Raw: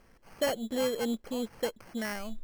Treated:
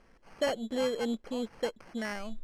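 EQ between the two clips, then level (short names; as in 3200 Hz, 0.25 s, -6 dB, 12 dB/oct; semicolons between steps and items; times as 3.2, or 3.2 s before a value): air absorption 57 m; bell 100 Hz -5.5 dB 1.1 oct; 0.0 dB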